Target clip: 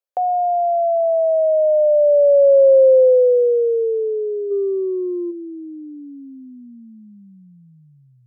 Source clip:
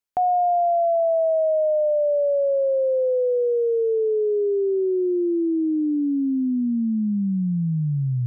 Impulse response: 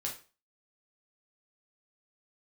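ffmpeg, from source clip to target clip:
-filter_complex "[0:a]asplit=3[a][b][c];[a]afade=t=out:st=4.5:d=0.02[d];[b]acontrast=50,afade=t=in:st=4.5:d=0.02,afade=t=out:st=5.3:d=0.02[e];[c]afade=t=in:st=5.3:d=0.02[f];[d][e][f]amix=inputs=3:normalize=0,highpass=f=530:t=q:w=6.4,volume=-5.5dB"

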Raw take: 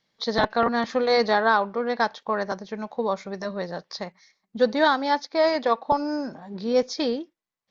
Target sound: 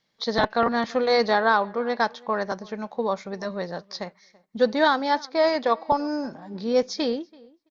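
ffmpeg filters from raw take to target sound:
-filter_complex "[0:a]asplit=2[a][b];[b]adelay=333,lowpass=f=2.7k:p=1,volume=-24dB,asplit=2[c][d];[d]adelay=333,lowpass=f=2.7k:p=1,volume=0.16[e];[a][c][e]amix=inputs=3:normalize=0"

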